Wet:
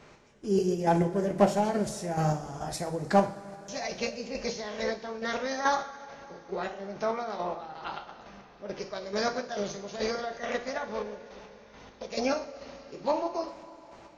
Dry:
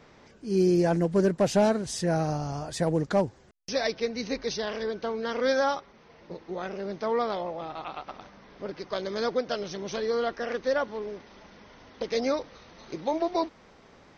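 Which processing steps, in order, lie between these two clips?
square-wave tremolo 2.3 Hz, depth 60%, duty 35%
coupled-rooms reverb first 0.39 s, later 3.6 s, from −18 dB, DRR 3.5 dB
formants moved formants +2 semitones

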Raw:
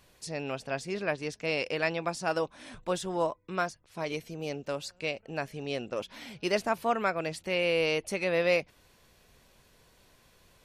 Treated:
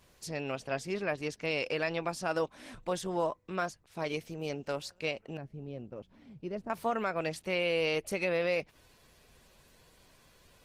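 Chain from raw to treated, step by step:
0:05.37–0:06.70: drawn EQ curve 130 Hz 0 dB, 1,700 Hz −19 dB, 10,000 Hz −28 dB
brickwall limiter −20.5 dBFS, peak gain reduction 5.5 dB
Opus 16 kbit/s 48,000 Hz

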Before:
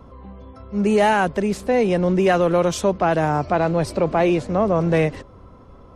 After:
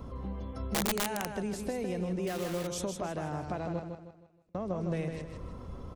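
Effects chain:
downward compressor 10 to 1, threshold −32 dBFS, peak gain reduction 19 dB
low-shelf EQ 450 Hz +7.5 dB
0:03.79–0:04.55: gate with flip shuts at −31 dBFS, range −42 dB
repeating echo 157 ms, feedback 38%, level −6 dB
0:00.74–0:01.32: wrap-around overflow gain 21.5 dB
high-shelf EQ 3,500 Hz +11 dB
0:02.27–0:02.67: bit-depth reduction 6 bits, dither none
level −5 dB

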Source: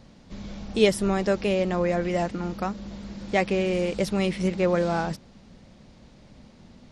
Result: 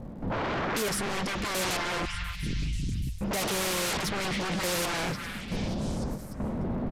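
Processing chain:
0:02.05–0:03.21: inverse Chebyshev band-stop filter 220–1,300 Hz, stop band 50 dB
low-pass that shuts in the quiet parts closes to 830 Hz, open at −20 dBFS
in parallel at +0.5 dB: downward compressor, threshold −34 dBFS, peak gain reduction 19 dB
on the sum: hard clipping −21 dBFS, distortion −9 dB
gate pattern ".xxx...x...xxx" 68 BPM −12 dB
sine wavefolder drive 19 dB, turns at −21 dBFS
surface crackle 280 per second −48 dBFS
on a send: echo through a band-pass that steps 295 ms, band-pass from 1,600 Hz, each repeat 0.7 octaves, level −4 dB
on the sum: downsampling to 32,000 Hz
every ending faded ahead of time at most 140 dB per second
level −6 dB

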